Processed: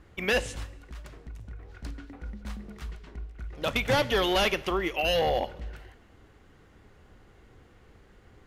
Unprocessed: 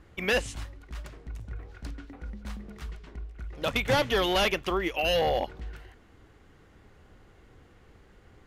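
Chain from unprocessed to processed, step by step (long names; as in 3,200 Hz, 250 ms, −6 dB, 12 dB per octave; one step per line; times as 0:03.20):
0:00.77–0:01.80: downward compressor, threshold −38 dBFS, peak gain reduction 5.5 dB
on a send: convolution reverb, pre-delay 3 ms, DRR 16 dB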